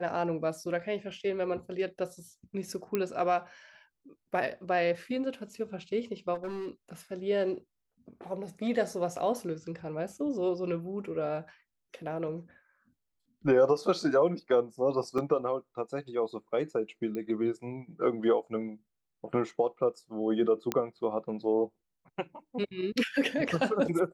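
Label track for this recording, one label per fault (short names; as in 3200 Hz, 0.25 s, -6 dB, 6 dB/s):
2.950000	2.950000	pop -16 dBFS
6.340000	6.710000	clipped -33 dBFS
15.180000	15.180000	gap 4.4 ms
17.150000	17.150000	pop -25 dBFS
20.720000	20.720000	pop -13 dBFS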